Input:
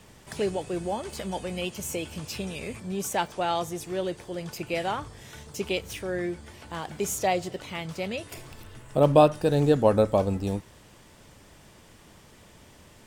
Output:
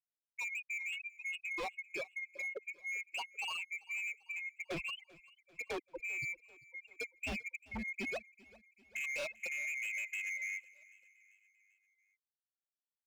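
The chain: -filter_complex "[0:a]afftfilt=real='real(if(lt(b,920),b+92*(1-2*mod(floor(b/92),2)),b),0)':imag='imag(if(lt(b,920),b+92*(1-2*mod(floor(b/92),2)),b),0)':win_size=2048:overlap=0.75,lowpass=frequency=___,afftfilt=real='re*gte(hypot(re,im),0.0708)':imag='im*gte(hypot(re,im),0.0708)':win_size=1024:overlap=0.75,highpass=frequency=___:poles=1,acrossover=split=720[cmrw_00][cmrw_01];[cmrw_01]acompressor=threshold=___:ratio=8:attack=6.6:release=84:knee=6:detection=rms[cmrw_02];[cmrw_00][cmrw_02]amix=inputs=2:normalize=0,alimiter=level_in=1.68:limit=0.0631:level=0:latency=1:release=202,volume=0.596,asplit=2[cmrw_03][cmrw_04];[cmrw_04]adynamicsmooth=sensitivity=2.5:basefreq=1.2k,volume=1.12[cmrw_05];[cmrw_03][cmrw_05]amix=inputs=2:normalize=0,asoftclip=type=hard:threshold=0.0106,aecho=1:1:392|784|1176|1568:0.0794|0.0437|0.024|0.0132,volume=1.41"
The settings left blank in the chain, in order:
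1.8k, 100, 0.0141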